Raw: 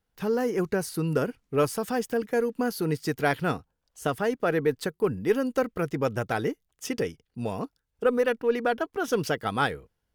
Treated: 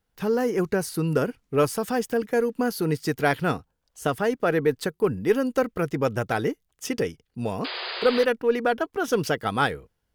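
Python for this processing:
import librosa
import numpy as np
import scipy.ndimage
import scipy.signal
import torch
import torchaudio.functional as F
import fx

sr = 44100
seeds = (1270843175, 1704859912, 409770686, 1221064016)

y = fx.spec_paint(x, sr, seeds[0], shape='noise', start_s=7.64, length_s=0.61, low_hz=350.0, high_hz=5000.0, level_db=-35.0)
y = y * 10.0 ** (2.5 / 20.0)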